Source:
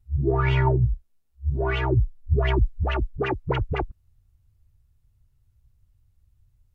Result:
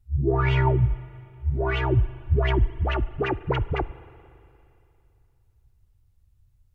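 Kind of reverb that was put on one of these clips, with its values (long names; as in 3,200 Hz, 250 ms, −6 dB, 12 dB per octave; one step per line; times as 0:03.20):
spring reverb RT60 2.7 s, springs 39/57 ms, chirp 60 ms, DRR 17.5 dB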